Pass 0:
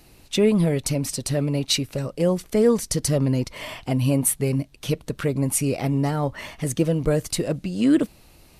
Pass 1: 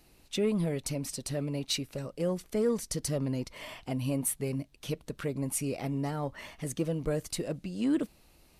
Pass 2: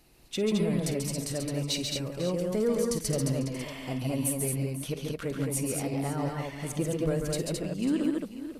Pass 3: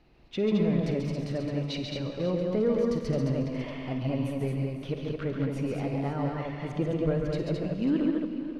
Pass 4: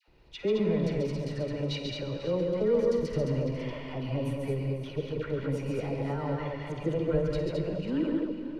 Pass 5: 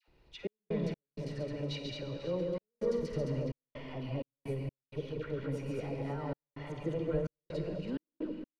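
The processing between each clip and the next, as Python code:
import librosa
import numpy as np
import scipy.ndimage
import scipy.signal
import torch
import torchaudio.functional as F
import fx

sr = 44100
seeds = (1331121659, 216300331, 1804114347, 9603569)

y1 = fx.peak_eq(x, sr, hz=110.0, db=-4.5, octaves=0.62)
y1 = 10.0 ** (-8.5 / 20.0) * np.tanh(y1 / 10.0 ** (-8.5 / 20.0))
y1 = y1 * librosa.db_to_amplitude(-9.0)
y2 = fx.echo_multitap(y1, sr, ms=(51, 135, 141, 216, 496, 545), db=(-14.0, -9.5, -5.5, -3.5, -15.5, -13.5))
y3 = fx.air_absorb(y2, sr, metres=270.0)
y3 = fx.rev_freeverb(y3, sr, rt60_s=2.5, hf_ratio=0.95, predelay_ms=20, drr_db=8.5)
y3 = y3 * librosa.db_to_amplitude(1.5)
y4 = y3 + 0.36 * np.pad(y3, (int(2.1 * sr / 1000.0), 0))[:len(y3)]
y4 = fx.dispersion(y4, sr, late='lows', ms=78.0, hz=960.0)
y4 = y4 * librosa.db_to_amplitude(-1.0)
y5 = fx.step_gate(y4, sr, bpm=64, pattern='xx.x.xxxxxx.xxx.', floor_db=-60.0, edge_ms=4.5)
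y5 = y5 * librosa.db_to_amplitude(-5.5)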